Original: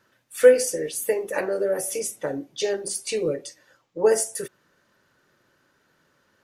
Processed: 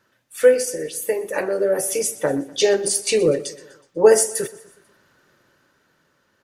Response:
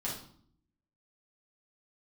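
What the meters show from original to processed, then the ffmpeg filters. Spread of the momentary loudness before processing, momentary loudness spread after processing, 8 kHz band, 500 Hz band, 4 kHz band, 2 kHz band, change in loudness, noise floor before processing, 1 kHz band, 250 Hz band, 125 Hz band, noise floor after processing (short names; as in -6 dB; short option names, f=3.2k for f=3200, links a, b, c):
17 LU, 11 LU, +5.5 dB, +3.5 dB, +7.0 dB, +3.5 dB, +4.0 dB, -67 dBFS, +5.5 dB, +6.0 dB, +7.0 dB, -65 dBFS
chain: -filter_complex "[0:a]dynaudnorm=f=360:g=7:m=11.5dB,asplit=2[a][b];[b]aecho=0:1:123|246|369|492:0.112|0.055|0.0269|0.0132[c];[a][c]amix=inputs=2:normalize=0"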